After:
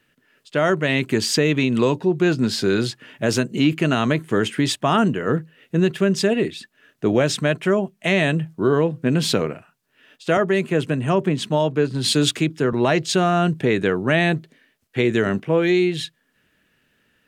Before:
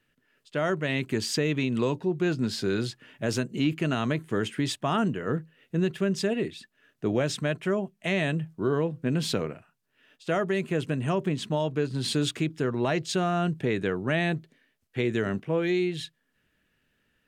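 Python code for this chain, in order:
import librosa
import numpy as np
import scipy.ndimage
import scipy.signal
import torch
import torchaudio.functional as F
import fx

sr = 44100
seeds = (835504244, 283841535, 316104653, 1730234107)

y = fx.low_shelf(x, sr, hz=64.0, db=-11.5)
y = fx.band_widen(y, sr, depth_pct=40, at=(10.37, 12.73))
y = y * 10.0 ** (8.5 / 20.0)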